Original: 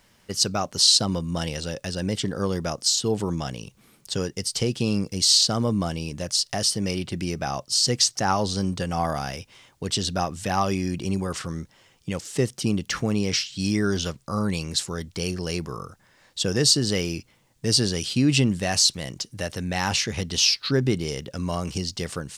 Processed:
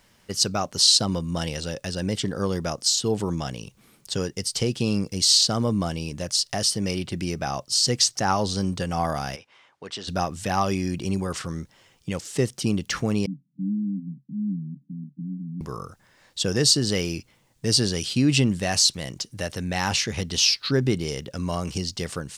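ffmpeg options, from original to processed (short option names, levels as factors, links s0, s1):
-filter_complex "[0:a]asplit=3[s0][s1][s2];[s0]afade=t=out:st=9.35:d=0.02[s3];[s1]bandpass=f=1200:t=q:w=0.74,afade=t=in:st=9.35:d=0.02,afade=t=out:st=10.07:d=0.02[s4];[s2]afade=t=in:st=10.07:d=0.02[s5];[s3][s4][s5]amix=inputs=3:normalize=0,asettb=1/sr,asplit=3[s6][s7][s8];[s6]atrim=end=13.264[s9];[s7]atrim=start=13.26:end=15.61,asetpts=PTS-STARTPTS,afade=t=in:d=0.004:c=qsin,afade=t=out:st=2.346:d=0.004:c=qsin,asuperpass=centerf=200:order=20:qfactor=1.3[s10];[s8]atrim=start=15.606[s11];[s9][s10]acrossfade=d=0.004:c1=hsin:c2=qsin[s12];[s12][s11]acrossfade=d=0.004:c1=qsin:c2=hsin"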